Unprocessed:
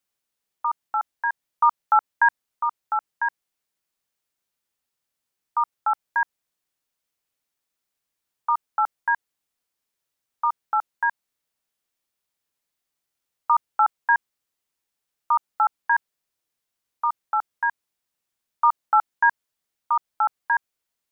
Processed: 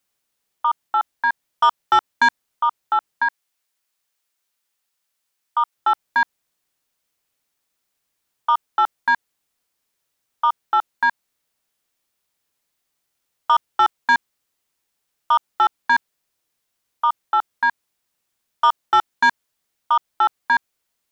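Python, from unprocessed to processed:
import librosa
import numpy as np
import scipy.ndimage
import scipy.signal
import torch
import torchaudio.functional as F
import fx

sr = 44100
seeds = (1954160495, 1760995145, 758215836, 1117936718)

y = fx.low_shelf(x, sr, hz=500.0, db=-11.0, at=(3.23, 5.74), fade=0.02)
y = 10.0 ** (-15.5 / 20.0) * np.tanh(y / 10.0 ** (-15.5 / 20.0))
y = y * librosa.db_to_amplitude(6.5)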